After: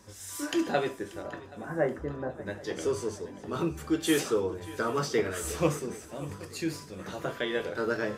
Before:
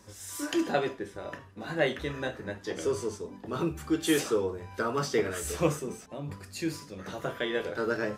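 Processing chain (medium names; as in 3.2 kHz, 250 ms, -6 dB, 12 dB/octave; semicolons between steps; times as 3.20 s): 1.22–2.45 s: low-pass 2.1 kHz -> 1.1 kHz 24 dB/octave; shuffle delay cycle 778 ms, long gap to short 3:1, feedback 47%, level -18.5 dB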